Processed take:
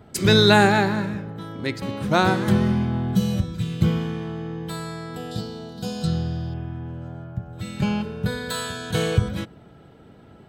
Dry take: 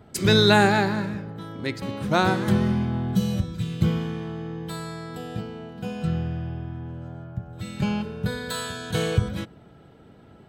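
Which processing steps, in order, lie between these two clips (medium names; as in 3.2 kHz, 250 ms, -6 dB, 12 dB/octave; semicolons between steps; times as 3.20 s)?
0.65–1.38 s: band-stop 4.7 kHz, Q 9.5; 5.31–6.54 s: resonant high shelf 3.2 kHz +8.5 dB, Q 3; trim +2 dB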